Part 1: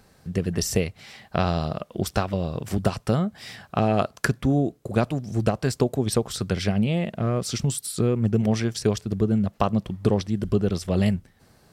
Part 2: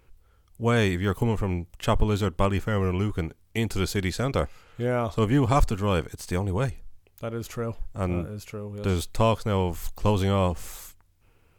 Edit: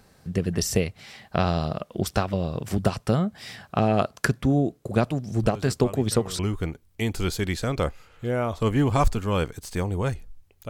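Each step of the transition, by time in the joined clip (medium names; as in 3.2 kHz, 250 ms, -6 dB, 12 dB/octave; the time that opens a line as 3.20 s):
part 1
5.43 s: add part 2 from 1.99 s 0.96 s -14 dB
6.39 s: go over to part 2 from 2.95 s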